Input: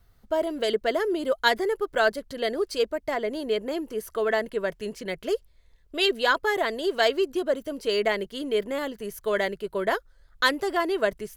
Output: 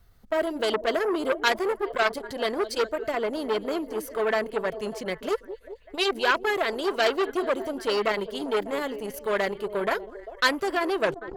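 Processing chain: tape stop on the ending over 0.32 s; repeats whose band climbs or falls 198 ms, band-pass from 310 Hz, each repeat 0.7 oct, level -11 dB; transformer saturation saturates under 2.2 kHz; trim +2 dB

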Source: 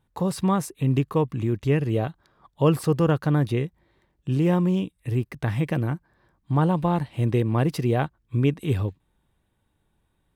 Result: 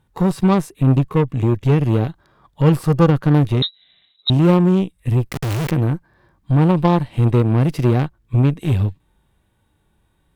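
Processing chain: harmonic-percussive split percussive -11 dB; in parallel at -0.5 dB: compression, threshold -31 dBFS, peak gain reduction 13.5 dB; 5.31–5.71 s: on the sum: companded quantiser 2-bit; Chebyshev shaper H 3 -20 dB, 8 -24 dB, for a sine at -9.5 dBFS; 3.62–4.30 s: frequency inversion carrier 3.9 kHz; trim +8 dB

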